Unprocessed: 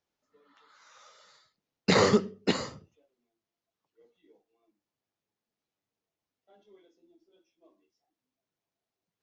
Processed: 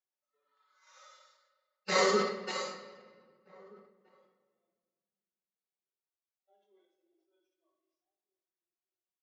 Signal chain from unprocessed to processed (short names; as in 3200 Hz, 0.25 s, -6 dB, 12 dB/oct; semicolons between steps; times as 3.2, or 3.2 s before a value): HPF 570 Hz 12 dB/oct; gate -58 dBFS, range -13 dB; harmonic-percussive split percussive -10 dB; comb 5.4 ms, depth 54%; harmonic-percussive split harmonic +8 dB; outdoor echo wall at 270 m, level -26 dB; reverb RT60 1.7 s, pre-delay 5 ms, DRR 5 dB; sustainer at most 78 dB/s; gain -5 dB